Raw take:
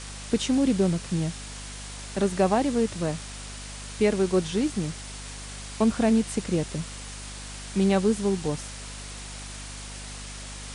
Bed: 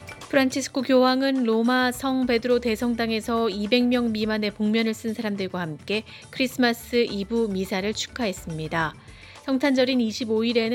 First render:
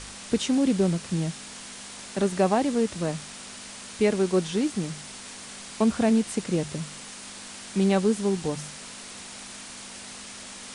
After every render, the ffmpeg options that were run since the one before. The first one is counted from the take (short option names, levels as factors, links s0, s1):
-af "bandreject=f=50:t=h:w=4,bandreject=f=100:t=h:w=4,bandreject=f=150:t=h:w=4"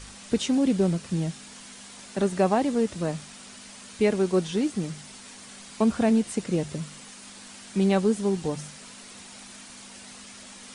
-af "afftdn=nr=6:nf=-42"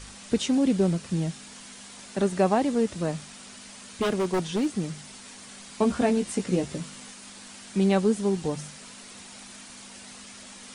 -filter_complex "[0:a]asplit=3[s0][s1][s2];[s0]afade=t=out:st=4.01:d=0.02[s3];[s1]aeval=exprs='0.106*(abs(mod(val(0)/0.106+3,4)-2)-1)':c=same,afade=t=in:st=4.01:d=0.02,afade=t=out:st=4.65:d=0.02[s4];[s2]afade=t=in:st=4.65:d=0.02[s5];[s3][s4][s5]amix=inputs=3:normalize=0,asettb=1/sr,asplit=3[s6][s7][s8];[s6]atrim=end=5.804[s9];[s7]atrim=start=5.8:end=7.12,asetpts=PTS-STARTPTS,afade=t=in:d=0.004:c=qsin,afade=t=out:st=1.316:d=0.004:c=qsin,asplit=2[s10][s11];[s11]adelay=16,volume=0.562[s12];[s10][s12]amix=inputs=2:normalize=0,atrim=end_sample=58212[s13];[s8]atrim=start=7.116[s14];[s9][s13]acrossfade=d=0.004:c1=hsin:c2=qsin[s15];[s15][s14]acrossfade=d=0.004:c1=qsin:c2=hsin"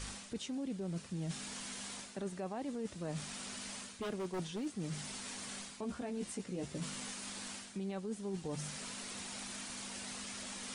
-af "alimiter=limit=0.0841:level=0:latency=1:release=266,areverse,acompressor=threshold=0.0126:ratio=6,areverse"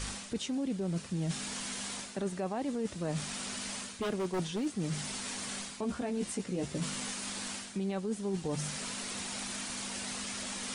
-af "volume=2"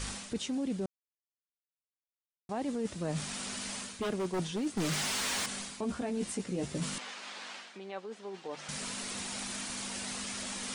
-filter_complex "[0:a]asettb=1/sr,asplit=3[s0][s1][s2];[s0]atrim=end=4.774[s3];[s1]atrim=start=4.77:end=5.46,asetpts=PTS-STARTPTS,afade=t=in:d=0.004:c=qsin,afade=t=out:st=0.686:d=0.004:c=qsin,asplit=2[s4][s5];[s5]highpass=f=720:p=1,volume=22.4,asoftclip=type=tanh:threshold=0.0596[s6];[s4][s6]amix=inputs=2:normalize=0,lowpass=f=4900:p=1,volume=0.501[s7];[s2]atrim=start=5.456[s8];[s3][s7]acrossfade=d=0.004:c1=hsin:c2=qsin[s9];[s9][s8]acrossfade=d=0.004:c1=qsin:c2=hsin,asettb=1/sr,asplit=3[s10][s11][s12];[s10]atrim=end=6.984[s13];[s11]atrim=start=6.98:end=8.69,asetpts=PTS-STARTPTS,afade=t=in:d=0.004:c=qsin,afade=t=out:st=1.706:d=0.004:c=qsin,highpass=530,lowpass=3700[s14];[s12]atrim=start=8.686[s15];[s13][s14]acrossfade=d=0.004:c1=hsin:c2=qsin[s16];[s16][s15]acrossfade=d=0.004:c1=qsin:c2=hsin,asplit=3[s17][s18][s19];[s17]atrim=end=0.86,asetpts=PTS-STARTPTS,afade=t=out:st=0.856:d=0.004:c=hsin[s20];[s18]atrim=start=0.86:end=2.49,asetpts=PTS-STARTPTS,volume=0[s21];[s19]atrim=start=2.49,asetpts=PTS-STARTPTS,afade=t=in:d=0.004:c=hsin[s22];[s20][s21][s22]concat=n=3:v=0:a=1"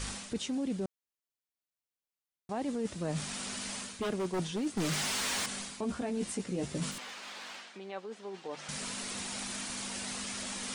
-filter_complex "[0:a]asettb=1/sr,asplit=3[s0][s1][s2];[s0]atrim=end=6.914[s3];[s1]atrim=start=6.91:end=7.74,asetpts=PTS-STARTPTS,afade=t=in:d=0.004:c=qsin,afade=t=out:st=0.826:d=0.004:c=qsin,asoftclip=type=hard:threshold=0.0106[s4];[s2]atrim=start=7.736[s5];[s3][s4]acrossfade=d=0.004:c1=hsin:c2=qsin[s6];[s6][s5]acrossfade=d=0.004:c1=qsin:c2=hsin"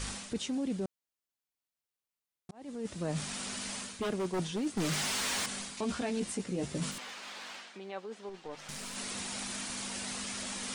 -filter_complex "[0:a]asettb=1/sr,asplit=3[s0][s1][s2];[s0]atrim=end=5.774[s3];[s1]atrim=start=5.77:end=6.2,asetpts=PTS-STARTPTS,afade=t=in:d=0.004:c=qsin,afade=t=out:st=0.426:d=0.004:c=qsin,equalizer=f=3900:w=0.42:g=8[s4];[s2]atrim=start=6.196[s5];[s3][s4]acrossfade=d=0.004:c1=hsin:c2=qsin[s6];[s6][s5]acrossfade=d=0.004:c1=qsin:c2=hsin,asettb=1/sr,asplit=3[s7][s8][s9];[s7]atrim=end=8.294[s10];[s8]atrim=start=8.29:end=8.96,asetpts=PTS-STARTPTS,afade=t=in:d=0.004:c=qsin,afade=t=out:st=0.666:d=0.004:c=qsin,aeval=exprs='(tanh(50.1*val(0)+0.6)-tanh(0.6))/50.1':c=same[s11];[s9]atrim=start=8.956[s12];[s10][s11]acrossfade=d=0.004:c1=hsin:c2=qsin[s13];[s13][s12]acrossfade=d=0.004:c1=qsin:c2=hsin,asplit=2[s14][s15];[s14]atrim=end=2.51,asetpts=PTS-STARTPTS,afade=t=out:st=2.506:d=0.004:c=hsin[s16];[s15]atrim=start=2.51,asetpts=PTS-STARTPTS,afade=t=in:d=0.49[s17];[s16][s17]concat=n=2:v=0:a=1"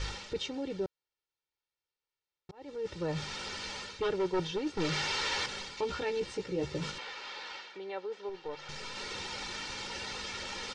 -af "lowpass=f=5300:w=0.5412,lowpass=f=5300:w=1.3066,aecho=1:1:2.2:0.83"